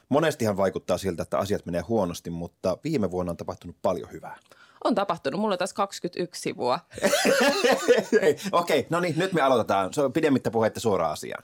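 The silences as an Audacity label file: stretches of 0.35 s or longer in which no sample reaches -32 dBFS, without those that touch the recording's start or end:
4.330000	4.820000	silence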